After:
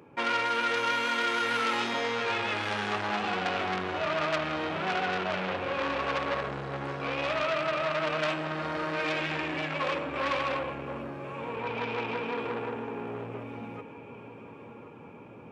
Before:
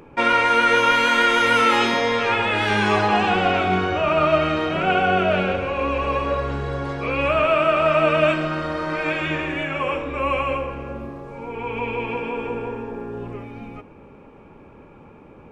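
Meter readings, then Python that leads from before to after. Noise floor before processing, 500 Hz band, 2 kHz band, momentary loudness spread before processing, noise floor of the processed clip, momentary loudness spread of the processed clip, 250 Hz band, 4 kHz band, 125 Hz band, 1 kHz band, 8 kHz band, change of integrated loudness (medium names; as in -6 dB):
-46 dBFS, -10.5 dB, -9.0 dB, 16 LU, -47 dBFS, 15 LU, -10.5 dB, -7.5 dB, -11.0 dB, -10.0 dB, no reading, -10.5 dB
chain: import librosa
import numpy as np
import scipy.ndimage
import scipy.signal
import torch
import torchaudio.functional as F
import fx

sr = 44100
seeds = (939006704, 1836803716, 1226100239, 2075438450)

p1 = scipy.signal.sosfilt(scipy.signal.butter(4, 94.0, 'highpass', fs=sr, output='sos'), x)
p2 = fx.rider(p1, sr, range_db=3, speed_s=0.5)
p3 = p2 + fx.echo_feedback(p2, sr, ms=1073, feedback_pct=51, wet_db=-16.0, dry=0)
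p4 = fx.transformer_sat(p3, sr, knee_hz=2600.0)
y = F.gain(torch.from_numpy(p4), -6.0).numpy()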